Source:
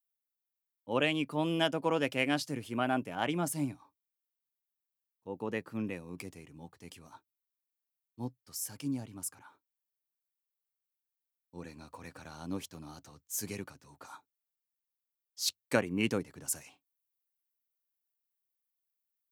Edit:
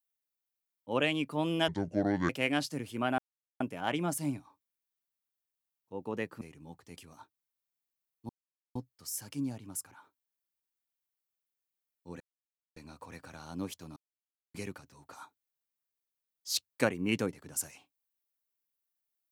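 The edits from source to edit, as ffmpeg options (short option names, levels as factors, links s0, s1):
-filter_complex "[0:a]asplit=9[s0][s1][s2][s3][s4][s5][s6][s7][s8];[s0]atrim=end=1.684[s9];[s1]atrim=start=1.68:end=2.06,asetpts=PTS-STARTPTS,asetrate=27342,aresample=44100,atrim=end_sample=27029,asetpts=PTS-STARTPTS[s10];[s2]atrim=start=2.056:end=2.95,asetpts=PTS-STARTPTS,afade=t=out:st=0.89:d=0.004:c=hsin,apad=pad_dur=0.42[s11];[s3]atrim=start=2.95:end=5.762,asetpts=PTS-STARTPTS,afade=t=in:d=0.004:c=hsin[s12];[s4]atrim=start=6.348:end=8.23,asetpts=PTS-STARTPTS,afade=t=out:st=1.878:d=0.004:c=hsin,apad=pad_dur=0.46[s13];[s5]atrim=start=8.23:end=11.68,asetpts=PTS-STARTPTS,afade=t=in:d=0.004:c=hsin,afade=t=out:st=3.446:d=0.004:c=hsin,apad=pad_dur=0.56[s14];[s6]atrim=start=11.68:end=12.88,asetpts=PTS-STARTPTS,afade=t=in:d=0.004:c=hsin,afade=t=out:st=1.196:d=0.004:c=hsin[s15];[s7]atrim=start=12.88:end=13.46,asetpts=PTS-STARTPTS,volume=0[s16];[s8]atrim=start=13.46,asetpts=PTS-STARTPTS,afade=t=in:d=0.004:c=hsin[s17];[s9][s10]acrossfade=d=0.004:c1=hsin:c2=hsin[s18];[s11][s12]concat=n=2:v=0:a=1[s19];[s18][s19]acrossfade=d=0.004:c1=hsin:c2=hsin[s20];[s13][s14][s15][s16][s17]concat=n=5:v=0:a=1[s21];[s20][s21]acrossfade=d=0.004:c1=hsin:c2=hsin"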